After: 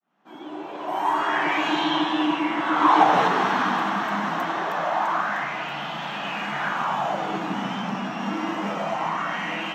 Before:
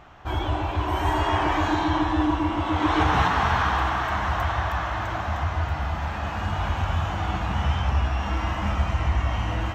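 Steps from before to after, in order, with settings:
fade in at the beginning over 1.85 s
Butterworth high-pass 150 Hz 72 dB per octave
auto-filter bell 0.25 Hz 210–3,200 Hz +11 dB

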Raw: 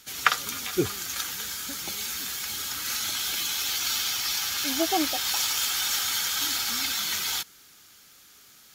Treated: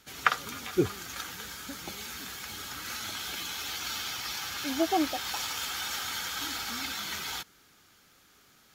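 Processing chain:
high-shelf EQ 2,700 Hz −11.5 dB

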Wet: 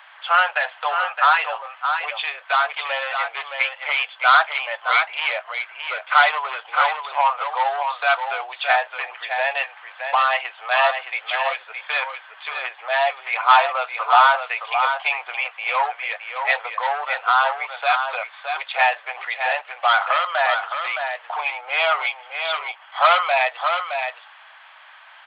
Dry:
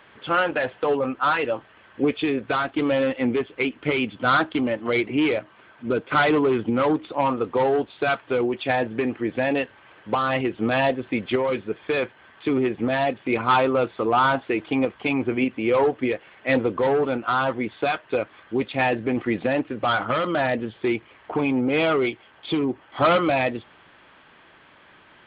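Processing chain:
Butterworth high-pass 680 Hz 48 dB per octave
single-tap delay 617 ms −6.5 dB
level +6 dB

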